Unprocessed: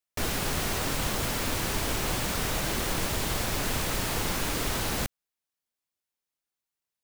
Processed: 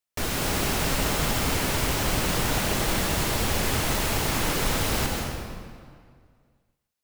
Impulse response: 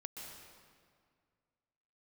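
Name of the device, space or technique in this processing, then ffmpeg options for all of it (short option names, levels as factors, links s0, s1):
stairwell: -filter_complex "[1:a]atrim=start_sample=2205[s0];[0:a][s0]afir=irnorm=-1:irlink=0,volume=2.24"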